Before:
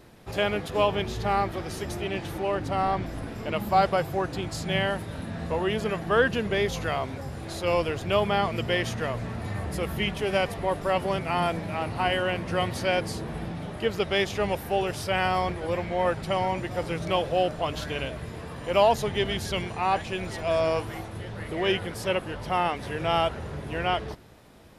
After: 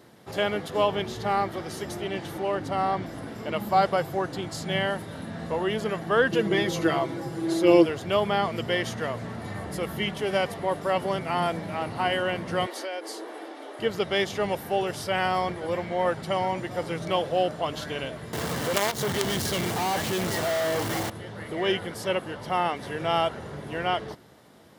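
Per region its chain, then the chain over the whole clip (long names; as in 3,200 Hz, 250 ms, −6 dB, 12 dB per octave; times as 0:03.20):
0:06.32–0:07.86: parametric band 340 Hz +13.5 dB 0.36 octaves + comb filter 6.1 ms, depth 79%
0:12.66–0:13.79: elliptic high-pass filter 290 Hz + downward compressor 4 to 1, threshold −30 dBFS
0:18.33–0:21.10: low-shelf EQ 400 Hz +3 dB + log-companded quantiser 2 bits + downward compressor 3 to 1, threshold −23 dBFS
whole clip: high-pass filter 130 Hz 12 dB per octave; notch filter 2,500 Hz, Q 9.8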